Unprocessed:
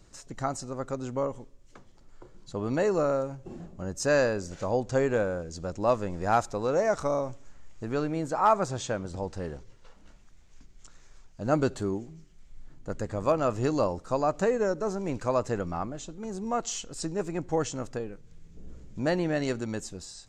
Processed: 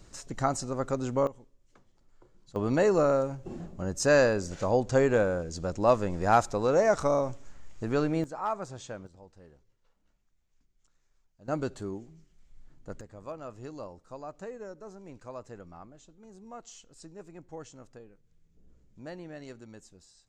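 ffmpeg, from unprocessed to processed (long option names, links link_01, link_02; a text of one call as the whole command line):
ffmpeg -i in.wav -af "asetnsamples=nb_out_samples=441:pad=0,asendcmd='1.27 volume volume -9.5dB;2.56 volume volume 2dB;8.24 volume volume -9.5dB;9.07 volume volume -19dB;11.48 volume volume -6.5dB;13.01 volume volume -15.5dB',volume=3dB" out.wav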